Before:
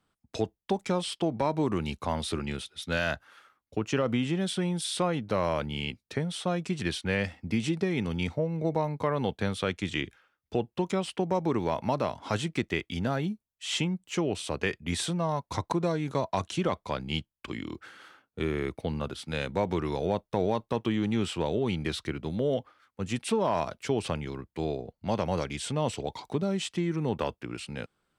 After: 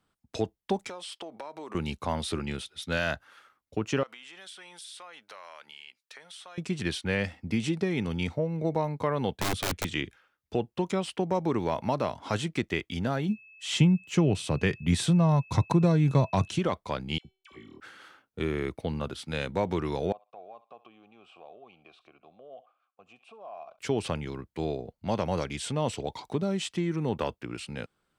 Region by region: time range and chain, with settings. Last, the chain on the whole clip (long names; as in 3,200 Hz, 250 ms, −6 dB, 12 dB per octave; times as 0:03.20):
0:00.89–0:01.75: high-pass filter 480 Hz + downward compressor 5 to 1, threshold −37 dBFS
0:04.03–0:06.58: high-pass filter 1,100 Hz + downward compressor 4 to 1, threshold −44 dBFS
0:09.39–0:09.85: low-shelf EQ 180 Hz +11 dB + wrap-around overflow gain 22.5 dB
0:13.28–0:16.57: parametric band 130 Hz +13 dB 1.4 octaves + steady tone 2,600 Hz −51 dBFS
0:17.18–0:17.80: tuned comb filter 380 Hz, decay 0.42 s, mix 80% + all-pass dispersion lows, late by 70 ms, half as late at 1,100 Hz
0:20.12–0:23.79: feedback echo with a high-pass in the loop 66 ms, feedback 18%, high-pass 780 Hz, level −18.5 dB + downward compressor 2 to 1, threshold −37 dBFS + formant filter a
whole clip: no processing